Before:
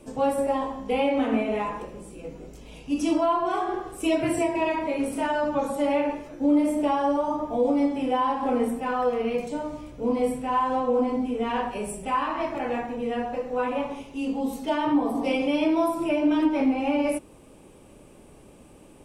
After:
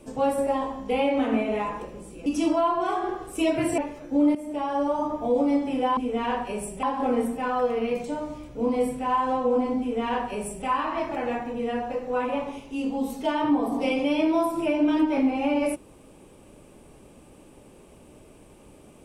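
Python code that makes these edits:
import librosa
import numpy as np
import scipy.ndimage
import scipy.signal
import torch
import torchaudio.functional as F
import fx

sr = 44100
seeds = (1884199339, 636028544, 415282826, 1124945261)

y = fx.edit(x, sr, fx.cut(start_s=2.26, length_s=0.65),
    fx.cut(start_s=4.43, length_s=1.64),
    fx.fade_in_from(start_s=6.64, length_s=0.58, floor_db=-14.5),
    fx.duplicate(start_s=11.23, length_s=0.86, to_s=8.26), tone=tone)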